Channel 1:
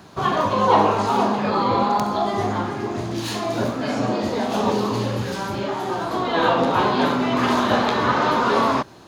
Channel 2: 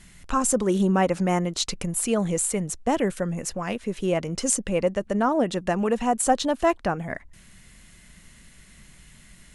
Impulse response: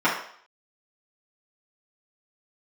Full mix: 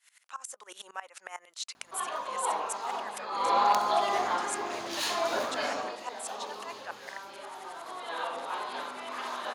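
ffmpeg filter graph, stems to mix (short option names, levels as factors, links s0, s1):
-filter_complex "[0:a]aeval=exprs='val(0)+0.0447*(sin(2*PI*50*n/s)+sin(2*PI*2*50*n/s)/2+sin(2*PI*3*50*n/s)/3+sin(2*PI*4*50*n/s)/4+sin(2*PI*5*50*n/s)/5)':c=same,adelay=1750,volume=0.473,afade=t=in:st=3.32:d=0.26:silence=0.266073,afade=t=out:st=5.61:d=0.37:silence=0.237137[s0];[1:a]highpass=900,acompressor=threshold=0.0158:ratio=3,aeval=exprs='val(0)*pow(10,-21*if(lt(mod(-11*n/s,1),2*abs(-11)/1000),1-mod(-11*n/s,1)/(2*abs(-11)/1000),(mod(-11*n/s,1)-2*abs(-11)/1000)/(1-2*abs(-11)/1000))/20)':c=same,volume=0.891[s1];[s0][s1]amix=inputs=2:normalize=0,highpass=670,dynaudnorm=f=110:g=9:m=1.78"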